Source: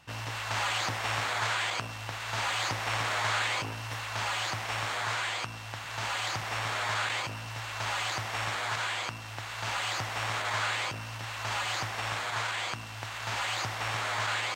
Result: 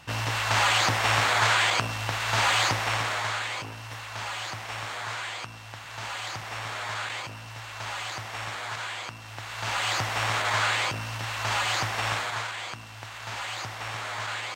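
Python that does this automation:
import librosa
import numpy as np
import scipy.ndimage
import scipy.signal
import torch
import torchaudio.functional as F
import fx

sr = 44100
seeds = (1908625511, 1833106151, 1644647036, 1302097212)

y = fx.gain(x, sr, db=fx.line((2.58, 8.0), (3.42, -2.0), (9.15, -2.0), (9.92, 5.5), (12.12, 5.5), (12.53, -2.0)))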